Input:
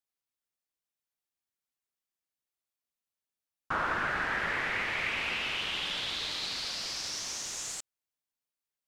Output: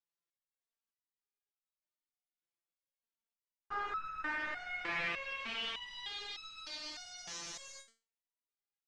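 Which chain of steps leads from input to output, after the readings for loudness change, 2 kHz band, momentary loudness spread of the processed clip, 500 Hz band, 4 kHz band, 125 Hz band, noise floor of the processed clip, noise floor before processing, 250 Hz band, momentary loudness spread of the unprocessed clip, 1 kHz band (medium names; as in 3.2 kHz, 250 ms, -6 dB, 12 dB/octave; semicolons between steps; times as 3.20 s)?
-8.0 dB, -8.0 dB, 9 LU, -8.0 dB, -9.0 dB, -13.0 dB, under -85 dBFS, under -85 dBFS, -8.0 dB, 5 LU, -6.5 dB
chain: distance through air 82 m; resonator arpeggio 3.3 Hz 170–1300 Hz; trim +8.5 dB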